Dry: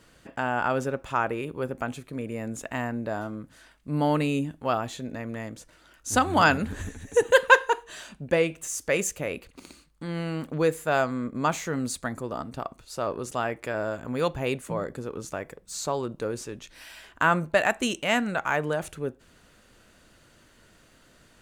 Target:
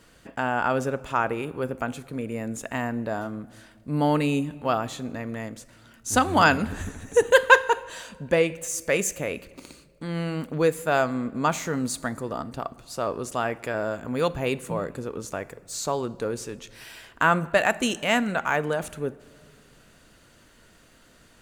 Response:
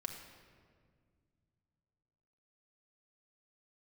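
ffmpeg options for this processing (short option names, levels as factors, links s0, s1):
-filter_complex "[0:a]asplit=2[s0][s1];[1:a]atrim=start_sample=2205,highshelf=f=8800:g=11[s2];[s1][s2]afir=irnorm=-1:irlink=0,volume=0.282[s3];[s0][s3]amix=inputs=2:normalize=0"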